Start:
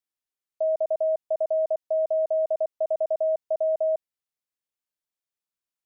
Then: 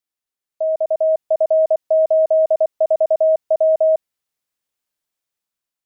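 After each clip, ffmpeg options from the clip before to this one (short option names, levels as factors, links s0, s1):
-af "dynaudnorm=f=380:g=5:m=2.11,volume=1.41"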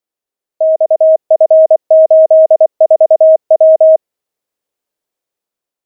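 -af "equalizer=f=470:t=o:w=1.7:g=11.5"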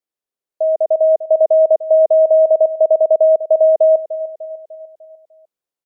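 -af "aecho=1:1:299|598|897|1196|1495:0.2|0.102|0.0519|0.0265|0.0135,volume=0.531"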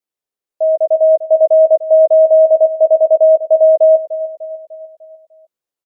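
-filter_complex "[0:a]asplit=2[s0][s1];[s1]adelay=14,volume=0.447[s2];[s0][s2]amix=inputs=2:normalize=0"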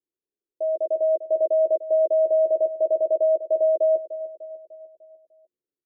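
-af "lowpass=f=370:t=q:w=3.4,volume=0.562"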